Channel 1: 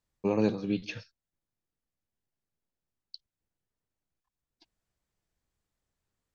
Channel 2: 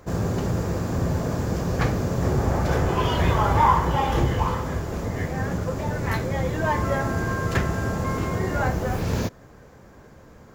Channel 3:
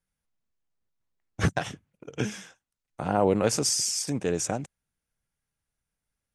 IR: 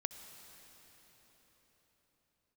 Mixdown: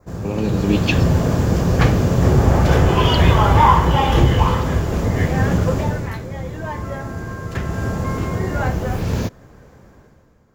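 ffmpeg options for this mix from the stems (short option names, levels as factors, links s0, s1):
-filter_complex "[0:a]alimiter=limit=0.0841:level=0:latency=1,volume=1.33[s0];[1:a]volume=1.06,afade=t=out:st=5.73:d=0.39:silence=0.237137,afade=t=in:st=7.54:d=0.3:silence=0.473151[s1];[s0][s1]amix=inputs=2:normalize=0,adynamicequalizer=threshold=0.00224:dfrequency=3000:dqfactor=2.2:tfrequency=3000:tqfactor=2.2:attack=5:release=100:ratio=0.375:range=3:mode=boostabove:tftype=bell,dynaudnorm=f=110:g=11:m=4.47,lowshelf=f=280:g=4"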